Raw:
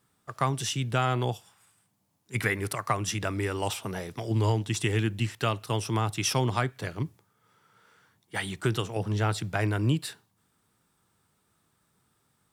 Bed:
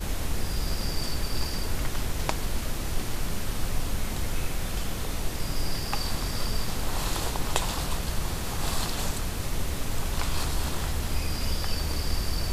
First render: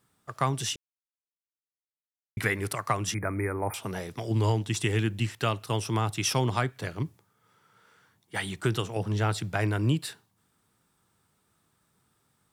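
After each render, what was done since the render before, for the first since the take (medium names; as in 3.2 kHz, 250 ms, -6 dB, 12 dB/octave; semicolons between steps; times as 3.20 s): 0.76–2.37 s: mute; 3.14–3.74 s: brick-wall FIR band-stop 2.5–9 kHz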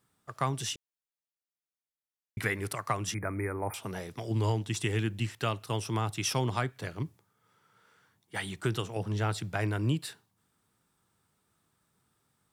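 trim -3.5 dB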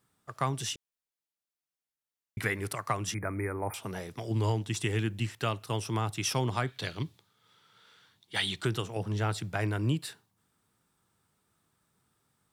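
6.67–8.65 s: peaking EQ 3.7 kHz +14.5 dB 1 oct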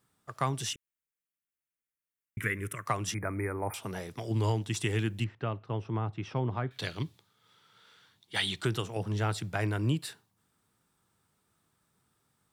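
0.73–2.86 s: static phaser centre 1.9 kHz, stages 4; 5.24–6.71 s: tape spacing loss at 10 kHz 42 dB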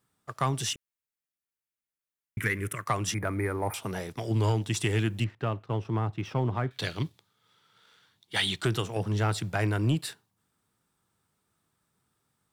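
waveshaping leveller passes 1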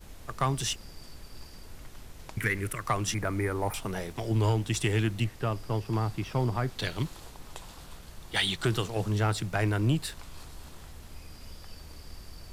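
add bed -17.5 dB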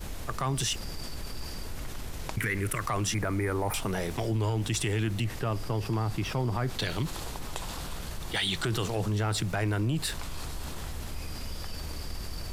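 peak limiter -22.5 dBFS, peak gain reduction 7.5 dB; level flattener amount 50%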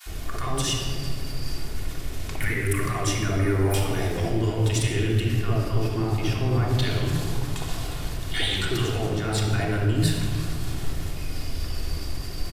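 bands offset in time highs, lows 60 ms, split 1 kHz; simulated room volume 3800 m³, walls mixed, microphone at 3.3 m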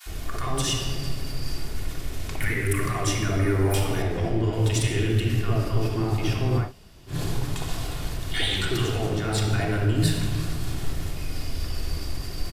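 4.02–4.53 s: treble shelf 4.5 kHz -11.5 dB; 6.65–7.14 s: room tone, crossfade 0.16 s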